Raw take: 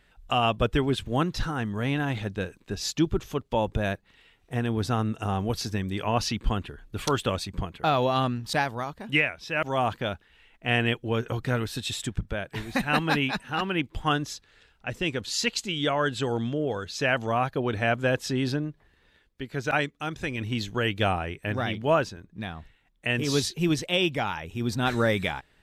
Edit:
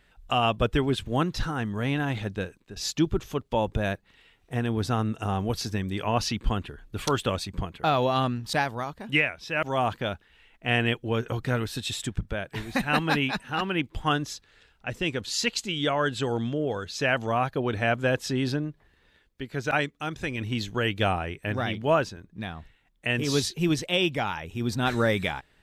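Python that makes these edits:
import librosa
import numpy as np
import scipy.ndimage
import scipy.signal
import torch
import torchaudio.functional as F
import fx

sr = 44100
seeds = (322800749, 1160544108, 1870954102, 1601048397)

y = fx.edit(x, sr, fx.fade_out_to(start_s=2.38, length_s=0.38, floor_db=-12.5), tone=tone)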